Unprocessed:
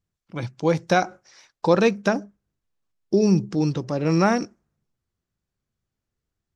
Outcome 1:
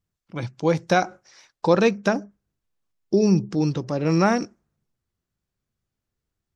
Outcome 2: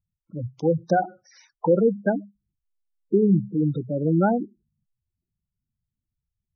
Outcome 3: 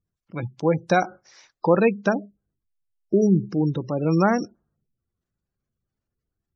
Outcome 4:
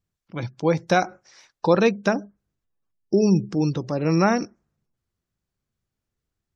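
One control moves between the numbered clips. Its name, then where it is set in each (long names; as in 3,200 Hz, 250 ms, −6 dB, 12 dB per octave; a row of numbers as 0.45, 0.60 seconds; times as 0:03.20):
gate on every frequency bin, under each frame's peak: −60, −10, −25, −40 decibels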